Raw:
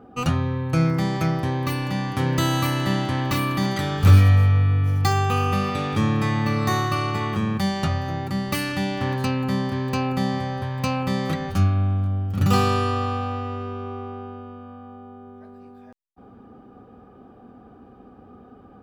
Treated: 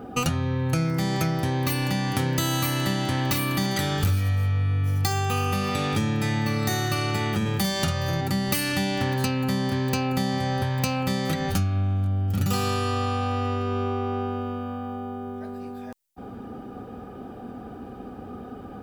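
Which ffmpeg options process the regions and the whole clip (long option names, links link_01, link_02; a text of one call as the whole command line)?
ffmpeg -i in.wav -filter_complex "[0:a]asettb=1/sr,asplit=3[link_01][link_02][link_03];[link_01]atrim=end=7.414[link_04];[link_02]atrim=start=7.41:end=8.21,asetpts=PTS-STARTPTS,afade=type=in:duration=0.004:curve=qsin,afade=type=out:start_time=0.796:duration=0.004:curve=qsin,highshelf=frequency=11000:gain=6,asplit=2[link_05][link_06];[link_06]adelay=48,volume=-3.5dB[link_07];[link_05][link_07]amix=inputs=2:normalize=0,atrim=end_sample=35280[link_08];[link_03]atrim=start=8.206[link_09];[link_04][link_08]acrossfade=duration=0.004:curve1=hsin:curve2=qsin[link_10];[link_10][link_09]acrossfade=duration=0.004:curve1=qsin:curve2=hsin,highshelf=frequency=5000:gain=11,bandreject=frequency=1100:width=6.7,acompressor=threshold=-31dB:ratio=6,volume=8.5dB" out.wav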